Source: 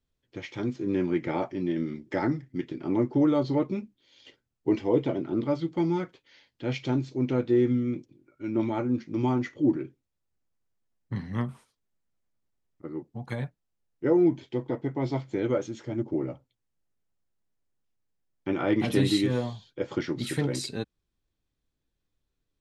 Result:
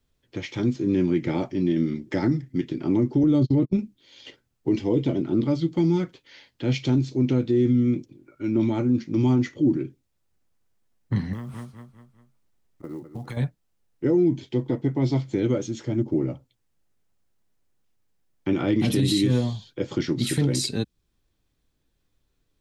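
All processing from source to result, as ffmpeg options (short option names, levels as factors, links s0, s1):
-filter_complex "[0:a]asettb=1/sr,asplit=3[s0][s1][s2];[s0]atrim=end=3.234[s3];[s1]atrim=start=3.23:end=3.79,asetpts=PTS-STARTPTS,afade=t=in:d=0.004:c=qsin,afade=t=out:st=0.556:d=0.004:c=qsin,agate=range=0.0112:threshold=0.0316:ratio=16:release=100:detection=peak,lowshelf=f=410:g=8[s4];[s2]atrim=start=3.786[s5];[s3][s4]acrossfade=d=0.004:c1=hsin:c2=qsin[s6];[s6][s5]acrossfade=d=0.004:c1=qsin:c2=hsin,asettb=1/sr,asplit=3[s7][s8][s9];[s7]atrim=end=11.334[s10];[s8]atrim=start=11.33:end=13.37,asetpts=PTS-STARTPTS,afade=t=in:d=0.004:c=qsin,afade=t=out:st=2.036:d=0.004:c=qsin,aecho=1:1:200|400|600|800:0.15|0.0658|0.029|0.0127,atrim=end_sample=89964,acompressor=threshold=0.0126:ratio=16:attack=3.2:release=140:knee=1:detection=peak,acrusher=bits=8:mode=log:mix=0:aa=0.000001[s11];[s9]atrim=start=13.366[s12];[s10][s11]acrossfade=d=0.004:c1=hsin:c2=qsin[s13];[s13][s12]acrossfade=d=0.004:c1=qsin:c2=hsin,acrossover=split=340|3000[s14][s15][s16];[s15]acompressor=threshold=0.00316:ratio=2[s17];[s14][s17][s16]amix=inputs=3:normalize=0,alimiter=limit=0.0841:level=0:latency=1:release=23,volume=2.66"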